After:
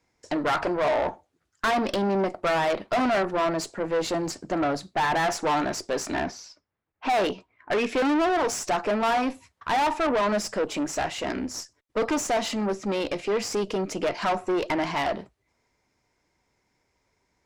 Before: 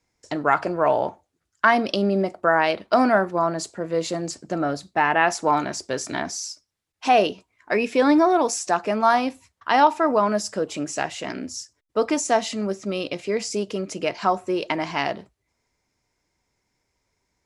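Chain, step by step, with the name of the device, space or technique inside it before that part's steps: 6.14–7.89 low-pass opened by the level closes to 1600 Hz, open at -16 dBFS; tube preamp driven hard (tube stage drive 26 dB, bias 0.45; low shelf 160 Hz -4.5 dB; high shelf 4400 Hz -8 dB); gain +6 dB

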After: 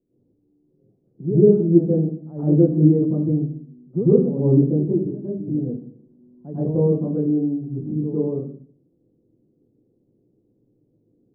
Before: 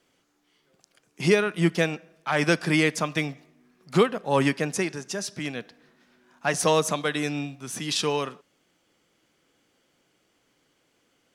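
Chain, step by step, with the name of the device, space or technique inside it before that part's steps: next room (LPF 380 Hz 24 dB/oct; reverb RT60 0.50 s, pre-delay 93 ms, DRR -10.5 dB); gain -1 dB

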